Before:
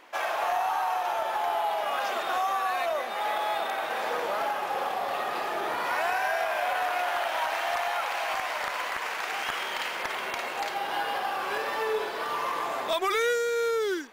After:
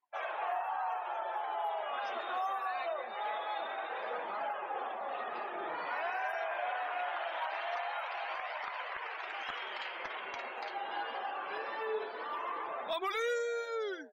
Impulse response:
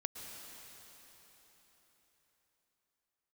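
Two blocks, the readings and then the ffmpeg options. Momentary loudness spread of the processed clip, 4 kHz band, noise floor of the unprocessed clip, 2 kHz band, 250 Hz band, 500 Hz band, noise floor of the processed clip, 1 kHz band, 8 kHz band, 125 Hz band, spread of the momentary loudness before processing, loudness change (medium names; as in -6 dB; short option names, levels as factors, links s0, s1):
5 LU, -10.5 dB, -34 dBFS, -8.5 dB, -10.5 dB, -8.5 dB, -43 dBFS, -8.0 dB, under -15 dB, no reading, 4 LU, -8.5 dB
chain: -filter_complex "[0:a]asplit=6[s0][s1][s2][s3][s4][s5];[s1]adelay=118,afreqshift=97,volume=0.1[s6];[s2]adelay=236,afreqshift=194,volume=0.0569[s7];[s3]adelay=354,afreqshift=291,volume=0.0324[s8];[s4]adelay=472,afreqshift=388,volume=0.0186[s9];[s5]adelay=590,afreqshift=485,volume=0.0106[s10];[s0][s6][s7][s8][s9][s10]amix=inputs=6:normalize=0,afftdn=nr=32:nf=-40,flanger=delay=0.8:depth=8.2:regen=-42:speed=0.23:shape=triangular,volume=0.596"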